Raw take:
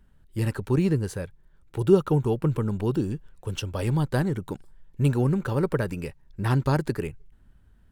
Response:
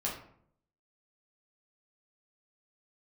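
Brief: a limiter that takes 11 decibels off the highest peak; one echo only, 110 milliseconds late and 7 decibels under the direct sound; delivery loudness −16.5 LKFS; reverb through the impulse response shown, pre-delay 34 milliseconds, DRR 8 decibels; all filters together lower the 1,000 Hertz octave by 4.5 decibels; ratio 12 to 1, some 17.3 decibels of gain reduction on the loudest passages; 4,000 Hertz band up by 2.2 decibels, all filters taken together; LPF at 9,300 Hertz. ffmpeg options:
-filter_complex "[0:a]lowpass=9300,equalizer=frequency=1000:width_type=o:gain=-6,equalizer=frequency=4000:width_type=o:gain=3.5,acompressor=threshold=-30dB:ratio=12,alimiter=level_in=6.5dB:limit=-24dB:level=0:latency=1,volume=-6.5dB,aecho=1:1:110:0.447,asplit=2[link_01][link_02];[1:a]atrim=start_sample=2205,adelay=34[link_03];[link_02][link_03]afir=irnorm=-1:irlink=0,volume=-12dB[link_04];[link_01][link_04]amix=inputs=2:normalize=0,volume=22.5dB"

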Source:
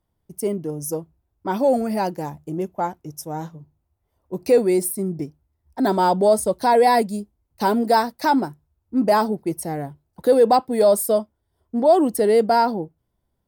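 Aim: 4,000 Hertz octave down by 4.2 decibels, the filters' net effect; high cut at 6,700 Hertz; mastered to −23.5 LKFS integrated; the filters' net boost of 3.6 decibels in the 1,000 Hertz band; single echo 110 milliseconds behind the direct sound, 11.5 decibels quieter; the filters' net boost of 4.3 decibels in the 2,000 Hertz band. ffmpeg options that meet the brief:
ffmpeg -i in.wav -af "lowpass=6700,equalizer=frequency=1000:width_type=o:gain=4,equalizer=frequency=2000:width_type=o:gain=5,equalizer=frequency=4000:width_type=o:gain=-5.5,aecho=1:1:110:0.266,volume=-5.5dB" out.wav

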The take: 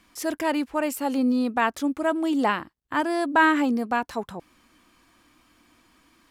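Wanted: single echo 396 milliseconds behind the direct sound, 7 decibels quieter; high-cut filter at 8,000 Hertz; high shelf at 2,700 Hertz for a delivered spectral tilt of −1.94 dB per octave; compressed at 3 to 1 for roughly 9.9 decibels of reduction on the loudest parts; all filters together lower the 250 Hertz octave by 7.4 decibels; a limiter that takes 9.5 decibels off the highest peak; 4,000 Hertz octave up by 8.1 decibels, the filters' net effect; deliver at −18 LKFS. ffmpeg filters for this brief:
ffmpeg -i in.wav -af "lowpass=8000,equalizer=frequency=250:width_type=o:gain=-9,highshelf=frequency=2700:gain=6.5,equalizer=frequency=4000:width_type=o:gain=6,acompressor=threshold=-26dB:ratio=3,alimiter=limit=-22.5dB:level=0:latency=1,aecho=1:1:396:0.447,volume=14.5dB" out.wav

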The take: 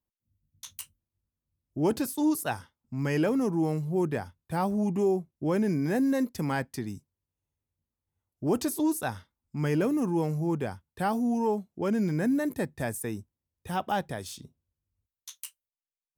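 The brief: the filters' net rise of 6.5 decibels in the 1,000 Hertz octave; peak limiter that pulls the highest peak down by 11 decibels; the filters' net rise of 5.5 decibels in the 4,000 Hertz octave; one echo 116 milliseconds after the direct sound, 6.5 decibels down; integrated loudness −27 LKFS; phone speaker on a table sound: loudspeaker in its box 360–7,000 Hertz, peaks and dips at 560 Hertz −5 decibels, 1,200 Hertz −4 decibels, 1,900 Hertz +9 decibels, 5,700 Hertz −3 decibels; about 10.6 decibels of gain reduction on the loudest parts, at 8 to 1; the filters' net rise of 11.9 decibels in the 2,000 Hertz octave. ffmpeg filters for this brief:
ffmpeg -i in.wav -af "equalizer=frequency=1000:width_type=o:gain=8.5,equalizer=frequency=2000:width_type=o:gain=5.5,equalizer=frequency=4000:width_type=o:gain=5,acompressor=threshold=-29dB:ratio=8,alimiter=level_in=5dB:limit=-24dB:level=0:latency=1,volume=-5dB,highpass=frequency=360:width=0.5412,highpass=frequency=360:width=1.3066,equalizer=frequency=560:width_type=q:width=4:gain=-5,equalizer=frequency=1200:width_type=q:width=4:gain=-4,equalizer=frequency=1900:width_type=q:width=4:gain=9,equalizer=frequency=5700:width_type=q:width=4:gain=-3,lowpass=frequency=7000:width=0.5412,lowpass=frequency=7000:width=1.3066,aecho=1:1:116:0.473,volume=14dB" out.wav

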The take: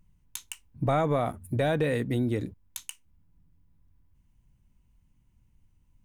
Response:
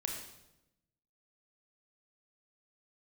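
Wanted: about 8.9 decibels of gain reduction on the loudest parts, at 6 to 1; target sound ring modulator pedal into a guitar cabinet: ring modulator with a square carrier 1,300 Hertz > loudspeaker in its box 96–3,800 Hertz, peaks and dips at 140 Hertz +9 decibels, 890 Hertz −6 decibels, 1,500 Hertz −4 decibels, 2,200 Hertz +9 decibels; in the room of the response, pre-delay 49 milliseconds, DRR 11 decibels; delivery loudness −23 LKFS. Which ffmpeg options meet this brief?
-filter_complex "[0:a]acompressor=threshold=-31dB:ratio=6,asplit=2[link_01][link_02];[1:a]atrim=start_sample=2205,adelay=49[link_03];[link_02][link_03]afir=irnorm=-1:irlink=0,volume=-12.5dB[link_04];[link_01][link_04]amix=inputs=2:normalize=0,aeval=exprs='val(0)*sgn(sin(2*PI*1300*n/s))':channel_layout=same,highpass=96,equalizer=frequency=140:width_type=q:width=4:gain=9,equalizer=frequency=890:width_type=q:width=4:gain=-6,equalizer=frequency=1500:width_type=q:width=4:gain=-4,equalizer=frequency=2200:width_type=q:width=4:gain=9,lowpass=frequency=3800:width=0.5412,lowpass=frequency=3800:width=1.3066,volume=13dB"

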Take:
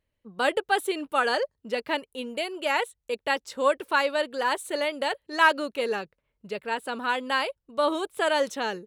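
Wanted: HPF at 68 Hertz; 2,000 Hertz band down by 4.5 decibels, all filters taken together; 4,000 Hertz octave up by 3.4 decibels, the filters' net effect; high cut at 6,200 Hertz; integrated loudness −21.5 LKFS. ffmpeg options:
ffmpeg -i in.wav -af "highpass=68,lowpass=6200,equalizer=frequency=2000:width_type=o:gain=-8,equalizer=frequency=4000:width_type=o:gain=8.5,volume=6.5dB" out.wav

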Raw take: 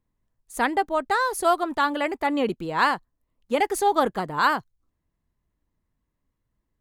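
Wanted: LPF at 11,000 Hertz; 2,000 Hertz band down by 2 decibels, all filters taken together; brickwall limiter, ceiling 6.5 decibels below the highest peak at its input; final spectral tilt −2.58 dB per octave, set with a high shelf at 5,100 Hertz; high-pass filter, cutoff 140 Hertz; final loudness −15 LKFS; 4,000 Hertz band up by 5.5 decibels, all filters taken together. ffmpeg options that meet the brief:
ffmpeg -i in.wav -af "highpass=140,lowpass=11000,equalizer=frequency=2000:width_type=o:gain=-4.5,equalizer=frequency=4000:width_type=o:gain=5,highshelf=frequency=5100:gain=7.5,volume=10.5dB,alimiter=limit=-3.5dB:level=0:latency=1" out.wav

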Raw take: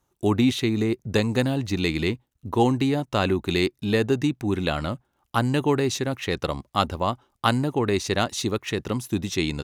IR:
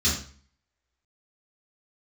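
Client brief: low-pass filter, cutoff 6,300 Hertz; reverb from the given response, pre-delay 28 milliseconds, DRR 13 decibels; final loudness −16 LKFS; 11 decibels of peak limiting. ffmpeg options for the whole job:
-filter_complex "[0:a]lowpass=6300,alimiter=limit=-15dB:level=0:latency=1,asplit=2[link_01][link_02];[1:a]atrim=start_sample=2205,adelay=28[link_03];[link_02][link_03]afir=irnorm=-1:irlink=0,volume=-24.5dB[link_04];[link_01][link_04]amix=inputs=2:normalize=0,volume=9.5dB"

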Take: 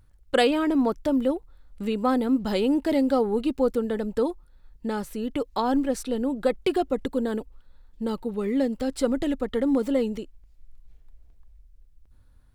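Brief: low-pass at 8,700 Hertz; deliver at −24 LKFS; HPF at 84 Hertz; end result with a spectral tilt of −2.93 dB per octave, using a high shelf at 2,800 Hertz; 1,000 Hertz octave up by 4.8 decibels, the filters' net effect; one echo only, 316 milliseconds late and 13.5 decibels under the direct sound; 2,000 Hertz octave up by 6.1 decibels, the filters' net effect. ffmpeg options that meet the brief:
ffmpeg -i in.wav -af "highpass=84,lowpass=8700,equalizer=frequency=1000:width_type=o:gain=5,equalizer=frequency=2000:width_type=o:gain=3.5,highshelf=frequency=2800:gain=6.5,aecho=1:1:316:0.211" out.wav

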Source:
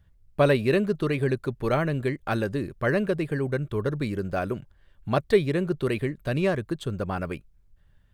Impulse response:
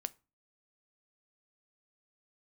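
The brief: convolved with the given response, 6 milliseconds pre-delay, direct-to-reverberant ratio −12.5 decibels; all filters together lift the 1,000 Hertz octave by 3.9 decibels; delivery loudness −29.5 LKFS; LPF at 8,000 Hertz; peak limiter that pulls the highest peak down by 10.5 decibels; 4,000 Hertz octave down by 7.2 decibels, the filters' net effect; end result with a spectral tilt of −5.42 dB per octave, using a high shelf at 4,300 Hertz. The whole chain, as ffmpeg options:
-filter_complex "[0:a]lowpass=8000,equalizer=frequency=1000:width_type=o:gain=6.5,equalizer=frequency=4000:width_type=o:gain=-5.5,highshelf=frequency=4300:gain=-8.5,alimiter=limit=-18dB:level=0:latency=1,asplit=2[link_01][link_02];[1:a]atrim=start_sample=2205,adelay=6[link_03];[link_02][link_03]afir=irnorm=-1:irlink=0,volume=14dB[link_04];[link_01][link_04]amix=inputs=2:normalize=0,volume=-13dB"

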